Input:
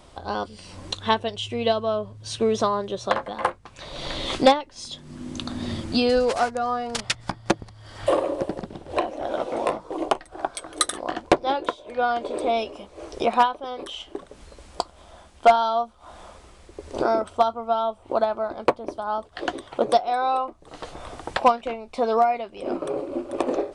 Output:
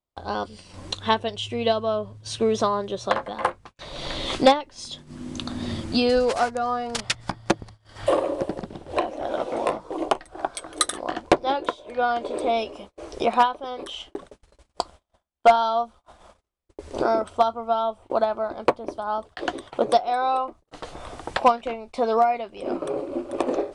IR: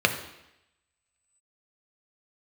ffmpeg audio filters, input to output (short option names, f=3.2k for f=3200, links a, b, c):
-af "agate=range=-40dB:threshold=-42dB:ratio=16:detection=peak"